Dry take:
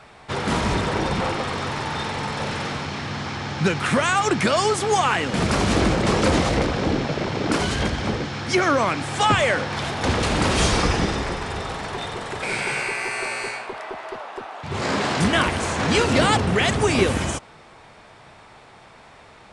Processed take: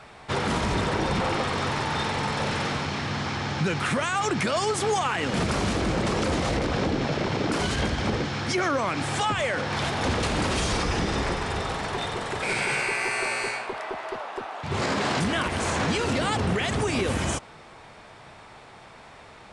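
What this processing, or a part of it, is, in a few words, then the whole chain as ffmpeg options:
stacked limiters: -af "alimiter=limit=-12dB:level=0:latency=1:release=248,alimiter=limit=-16.5dB:level=0:latency=1:release=39"

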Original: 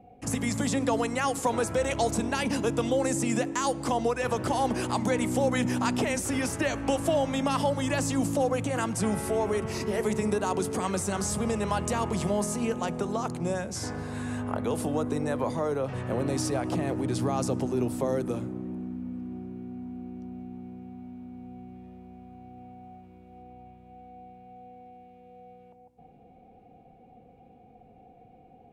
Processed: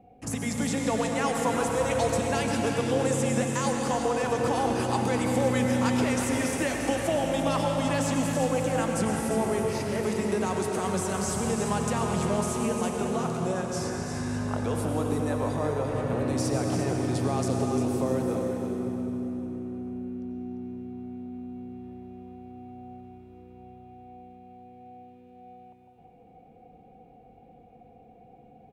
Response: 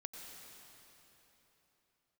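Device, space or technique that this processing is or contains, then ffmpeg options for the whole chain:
cave: -filter_complex "[0:a]aecho=1:1:348:0.376[a];[1:a]atrim=start_sample=2205[b];[a][b]afir=irnorm=-1:irlink=0,volume=3.5dB"

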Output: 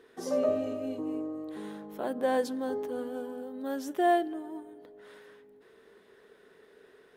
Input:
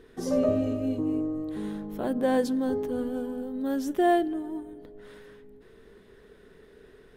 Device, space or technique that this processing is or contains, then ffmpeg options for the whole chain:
filter by subtraction: -filter_complex "[0:a]asplit=2[a][b];[b]lowpass=710,volume=-1[c];[a][c]amix=inputs=2:normalize=0,volume=-2.5dB"

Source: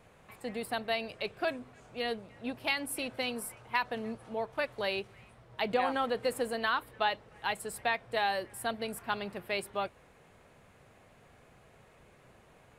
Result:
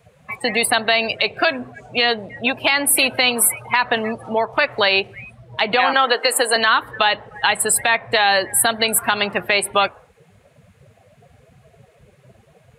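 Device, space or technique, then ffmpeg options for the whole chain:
mastering chain: -filter_complex "[0:a]asettb=1/sr,asplit=3[a][b][c];[a]atrim=end=5.934[d];[b]atrim=start=5.93:end=6.56,asetpts=PTS-STARTPTS,afade=t=in:d=0.004:c=qsin,afade=t=out:st=0.626:d=0.004:c=qsin,highpass=f=290:w=0.5412,highpass=f=290:w=1.3066[e];[c]atrim=start=6.556[f];[d][e]acrossfade=d=0.004:c1=hsin:c2=qsin[g];[g][f]acrossfade=d=0.004:c1=qsin:c2=hsin,afftdn=nr=25:nf=-49,highpass=58,equalizer=f=490:t=o:w=0.34:g=-2,acrossover=split=460|1500[h][i][j];[h]acompressor=threshold=-43dB:ratio=4[k];[i]acompressor=threshold=-34dB:ratio=4[l];[j]acompressor=threshold=-41dB:ratio=4[m];[k][l][m]amix=inputs=3:normalize=0,acompressor=threshold=-37dB:ratio=2.5,tiltshelf=f=970:g=-7,alimiter=level_in=27.5dB:limit=-1dB:release=50:level=0:latency=1,volume=-3.5dB"

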